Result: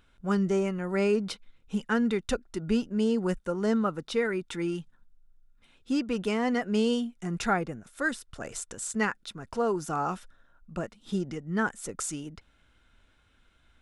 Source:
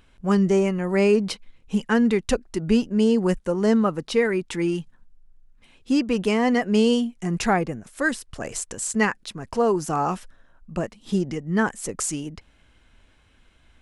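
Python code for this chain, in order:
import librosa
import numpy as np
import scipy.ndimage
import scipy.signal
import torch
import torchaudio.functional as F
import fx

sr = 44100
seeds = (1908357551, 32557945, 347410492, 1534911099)

y = fx.small_body(x, sr, hz=(1400.0, 3600.0), ring_ms=25, db=10)
y = F.gain(torch.from_numpy(y), -7.0).numpy()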